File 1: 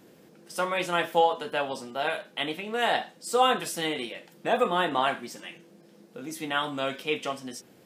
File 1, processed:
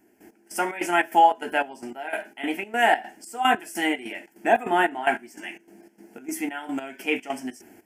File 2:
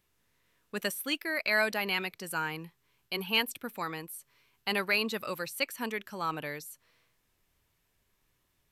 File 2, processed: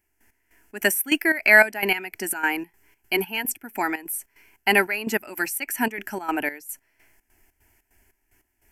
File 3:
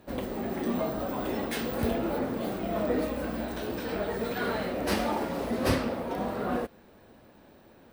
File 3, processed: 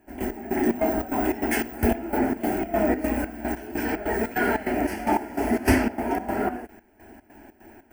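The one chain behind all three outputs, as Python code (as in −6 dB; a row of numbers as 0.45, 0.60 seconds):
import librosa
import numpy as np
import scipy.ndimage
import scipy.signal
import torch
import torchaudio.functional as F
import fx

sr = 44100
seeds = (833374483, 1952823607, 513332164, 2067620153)

y = fx.fixed_phaser(x, sr, hz=770.0, stages=8)
y = fx.step_gate(y, sr, bpm=148, pattern='..x..xx.xx.xx.xx', floor_db=-12.0, edge_ms=4.5)
y = y * 10.0 ** (-26 / 20.0) / np.sqrt(np.mean(np.square(y)))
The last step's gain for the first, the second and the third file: +8.5, +15.0, +10.5 decibels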